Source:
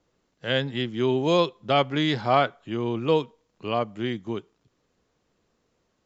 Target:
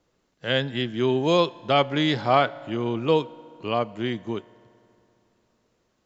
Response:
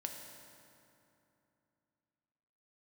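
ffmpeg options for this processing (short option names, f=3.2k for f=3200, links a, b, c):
-filter_complex "[0:a]asplit=2[a][b];[1:a]atrim=start_sample=2205,lowshelf=f=270:g=-10[c];[b][c]afir=irnorm=-1:irlink=0,volume=-11.5dB[d];[a][d]amix=inputs=2:normalize=0"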